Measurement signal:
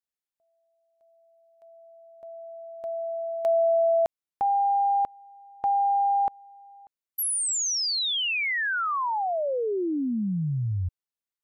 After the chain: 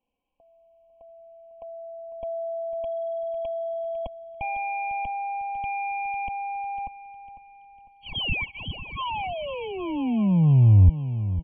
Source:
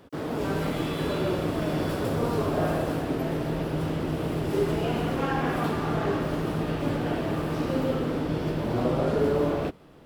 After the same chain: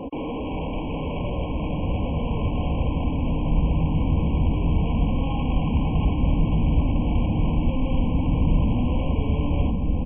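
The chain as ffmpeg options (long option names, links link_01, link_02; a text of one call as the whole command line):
ffmpeg -i in.wav -filter_complex "[0:a]lowpass=frequency=1200:poles=1,aecho=1:1:3.9:0.69,apsyclip=18dB,acompressor=threshold=-19dB:ratio=4:attack=0.44:release=38:knee=1:detection=peak,aresample=8000,asoftclip=type=hard:threshold=-30dB,aresample=44100,asubboost=boost=10:cutoff=130,asplit=2[link_01][link_02];[link_02]aecho=0:1:501|1002|1503|2004|2505:0.237|0.111|0.0524|0.0246|0.0116[link_03];[link_01][link_03]amix=inputs=2:normalize=0,afftfilt=real='re*eq(mod(floor(b*sr/1024/1100),2),0)':imag='im*eq(mod(floor(b*sr/1024/1100),2),0)':win_size=1024:overlap=0.75,volume=2.5dB" out.wav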